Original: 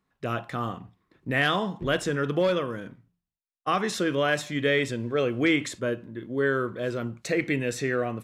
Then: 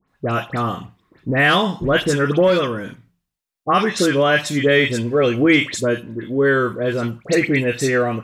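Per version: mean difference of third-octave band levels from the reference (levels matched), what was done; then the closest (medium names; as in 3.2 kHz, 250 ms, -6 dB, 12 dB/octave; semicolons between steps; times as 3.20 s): 4.0 dB: phase dispersion highs, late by 83 ms, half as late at 2.1 kHz; trim +9 dB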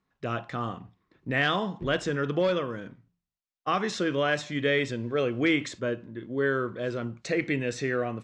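1.0 dB: low-pass 7 kHz 24 dB/octave; trim -1.5 dB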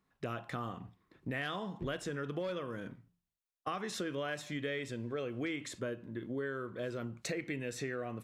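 2.5 dB: compression 5:1, threshold -34 dBFS, peak gain reduction 14 dB; trim -2 dB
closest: second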